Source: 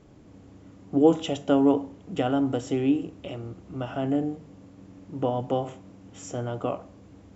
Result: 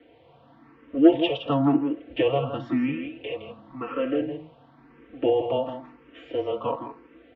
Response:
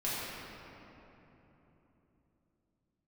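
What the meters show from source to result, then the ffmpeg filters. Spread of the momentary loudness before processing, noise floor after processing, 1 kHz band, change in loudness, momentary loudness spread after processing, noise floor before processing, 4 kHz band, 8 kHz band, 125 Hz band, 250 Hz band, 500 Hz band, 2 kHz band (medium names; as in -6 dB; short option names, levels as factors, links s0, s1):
17 LU, -56 dBFS, +0.5 dB, +1.0 dB, 17 LU, -51 dBFS, +4.5 dB, no reading, -1.5 dB, +1.0 dB, +2.0 dB, +5.0 dB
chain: -filter_complex "[0:a]aecho=1:1:4.7:0.94,acontrast=42,asplit=2[s0][s1];[s1]aecho=0:1:165:0.398[s2];[s0][s2]amix=inputs=2:normalize=0,highpass=f=410:t=q:w=0.5412,highpass=f=410:t=q:w=1.307,lowpass=f=3600:t=q:w=0.5176,lowpass=f=3600:t=q:w=0.7071,lowpass=f=3600:t=q:w=1.932,afreqshift=-140,asplit=2[s3][s4];[s4]afreqshift=0.96[s5];[s3][s5]amix=inputs=2:normalize=1"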